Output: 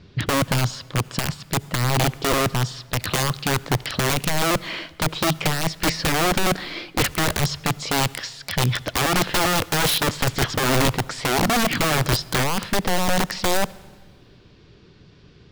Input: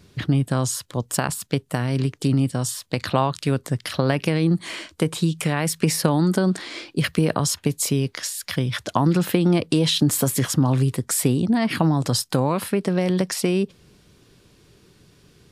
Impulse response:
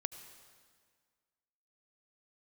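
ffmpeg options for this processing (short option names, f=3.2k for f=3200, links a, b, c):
-filter_complex "[0:a]lowpass=f=4.9k:w=0.5412,lowpass=f=4.9k:w=1.3066,aeval=exprs='(mod(7.08*val(0)+1,2)-1)/7.08':c=same,asplit=2[a][b];[1:a]atrim=start_sample=2205,asetrate=52920,aresample=44100,lowshelf=f=180:g=10[c];[b][c]afir=irnorm=-1:irlink=0,volume=-6.5dB[d];[a][d]amix=inputs=2:normalize=0"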